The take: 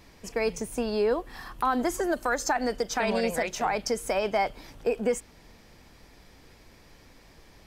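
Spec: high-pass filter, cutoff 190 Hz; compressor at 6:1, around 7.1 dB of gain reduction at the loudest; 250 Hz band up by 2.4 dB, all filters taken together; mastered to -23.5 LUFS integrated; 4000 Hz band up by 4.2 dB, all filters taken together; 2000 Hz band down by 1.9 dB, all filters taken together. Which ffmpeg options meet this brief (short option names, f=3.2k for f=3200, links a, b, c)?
-af "highpass=190,equalizer=f=250:t=o:g=4.5,equalizer=f=2k:t=o:g=-4,equalizer=f=4k:t=o:g=6.5,acompressor=threshold=-28dB:ratio=6,volume=9.5dB"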